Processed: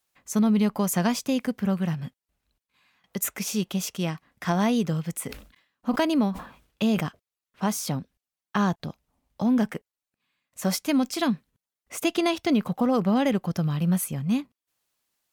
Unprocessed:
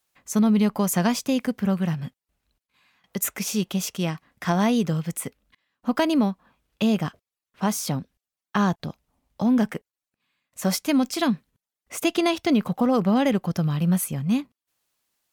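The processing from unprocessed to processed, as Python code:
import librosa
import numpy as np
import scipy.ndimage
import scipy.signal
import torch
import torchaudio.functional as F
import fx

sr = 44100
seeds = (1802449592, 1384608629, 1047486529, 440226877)

y = fx.sustainer(x, sr, db_per_s=110.0, at=(5.23, 7.04))
y = y * librosa.db_to_amplitude(-2.0)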